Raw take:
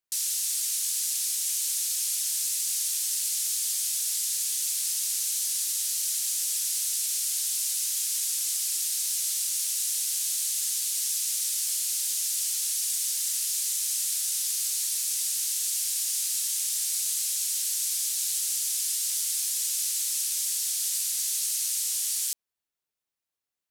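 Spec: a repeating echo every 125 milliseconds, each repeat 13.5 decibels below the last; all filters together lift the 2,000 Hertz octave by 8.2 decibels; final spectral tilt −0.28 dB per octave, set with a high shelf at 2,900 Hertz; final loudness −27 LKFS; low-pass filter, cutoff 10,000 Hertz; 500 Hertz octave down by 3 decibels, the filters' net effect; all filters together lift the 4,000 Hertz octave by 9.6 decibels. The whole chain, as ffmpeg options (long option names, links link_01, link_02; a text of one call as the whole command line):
ffmpeg -i in.wav -af "lowpass=10000,equalizer=frequency=500:width_type=o:gain=-5,equalizer=frequency=2000:width_type=o:gain=5.5,highshelf=frequency=2900:gain=5,equalizer=frequency=4000:width_type=o:gain=7,aecho=1:1:125|250:0.211|0.0444,volume=-6.5dB" out.wav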